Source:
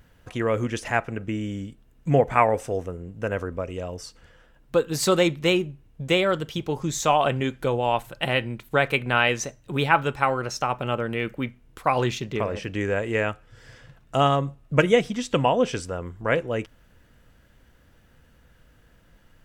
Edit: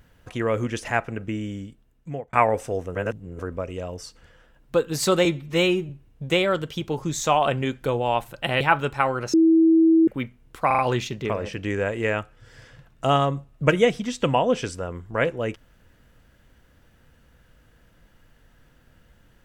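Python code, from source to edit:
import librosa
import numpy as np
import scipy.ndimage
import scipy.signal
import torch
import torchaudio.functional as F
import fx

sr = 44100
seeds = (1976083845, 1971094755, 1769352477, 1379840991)

y = fx.edit(x, sr, fx.fade_out_span(start_s=1.11, length_s=1.22, curve='qsin'),
    fx.reverse_span(start_s=2.95, length_s=0.44),
    fx.stretch_span(start_s=5.25, length_s=0.43, factor=1.5),
    fx.cut(start_s=8.39, length_s=1.44),
    fx.bleep(start_s=10.56, length_s=0.74, hz=325.0, db=-12.5),
    fx.stutter(start_s=11.89, slice_s=0.04, count=4), tone=tone)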